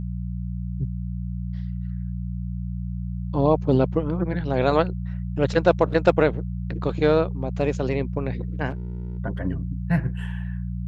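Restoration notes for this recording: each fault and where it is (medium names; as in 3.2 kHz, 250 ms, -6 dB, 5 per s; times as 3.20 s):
hum 60 Hz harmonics 3 -29 dBFS
8.69–9.19 s: clipped -26.5 dBFS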